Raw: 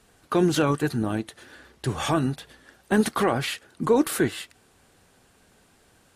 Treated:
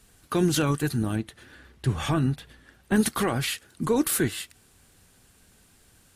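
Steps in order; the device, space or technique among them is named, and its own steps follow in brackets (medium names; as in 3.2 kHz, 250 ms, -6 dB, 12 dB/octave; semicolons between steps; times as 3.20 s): 1.16–2.96 s: tone controls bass +2 dB, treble -9 dB; smiley-face EQ (bass shelf 100 Hz +6.5 dB; peaking EQ 650 Hz -6 dB 2.2 oct; treble shelf 8.2 kHz +8.5 dB)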